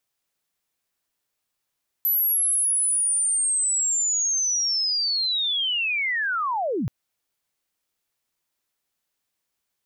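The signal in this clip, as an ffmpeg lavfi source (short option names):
-f lavfi -i "aevalsrc='pow(10,(-18.5-4*t/4.83)/20)*sin(2*PI*(12000*t-11909*t*t/(2*4.83)))':d=4.83:s=44100"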